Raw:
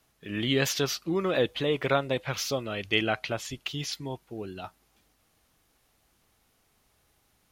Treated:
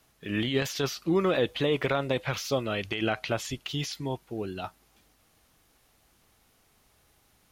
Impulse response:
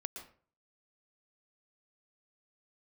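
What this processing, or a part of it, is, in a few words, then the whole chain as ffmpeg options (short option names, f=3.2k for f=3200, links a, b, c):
de-esser from a sidechain: -filter_complex "[0:a]asplit=2[a][b];[b]highpass=f=5.7k:p=1,apad=whole_len=331460[c];[a][c]sidechaincompress=threshold=-39dB:ratio=12:attack=3.1:release=47,volume=3.5dB"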